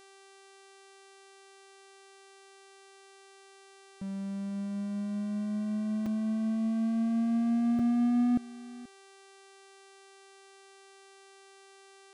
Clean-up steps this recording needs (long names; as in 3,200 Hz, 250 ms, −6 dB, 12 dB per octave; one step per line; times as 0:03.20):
hum removal 390.4 Hz, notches 26
repair the gap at 0:06.06/0:07.79, 4.3 ms
echo removal 481 ms −19.5 dB